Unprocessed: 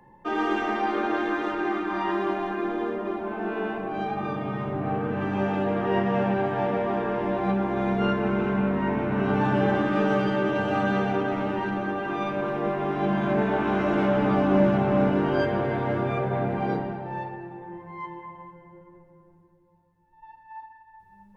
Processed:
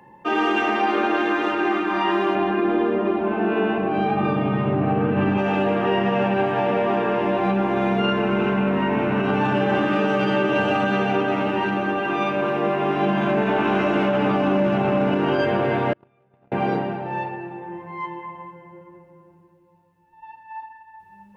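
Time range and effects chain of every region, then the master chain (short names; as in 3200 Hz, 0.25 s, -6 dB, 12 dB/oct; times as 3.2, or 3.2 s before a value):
2.35–5.38 LPF 4500 Hz + low shelf 350 Hz +8 dB
15.93–16.52 gate -21 dBFS, range -42 dB + low shelf 210 Hz +4.5 dB
whole clip: limiter -17 dBFS; HPF 150 Hz 6 dB/oct; bell 2700 Hz +8.5 dB 0.26 oct; gain +6 dB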